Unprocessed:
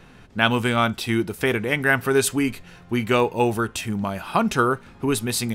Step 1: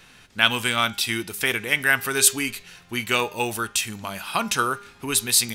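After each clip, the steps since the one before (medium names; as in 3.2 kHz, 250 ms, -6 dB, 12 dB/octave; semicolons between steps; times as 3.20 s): tilt shelf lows -9 dB, about 1.5 kHz; de-hum 201.9 Hz, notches 35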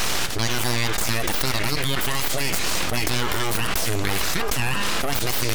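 full-wave rectifier; level flattener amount 100%; trim -8 dB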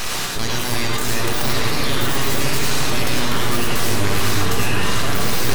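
on a send: delay with an opening low-pass 360 ms, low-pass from 400 Hz, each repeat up 2 oct, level 0 dB; on the sum: gated-style reverb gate 130 ms rising, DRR -0.5 dB; trim -2.5 dB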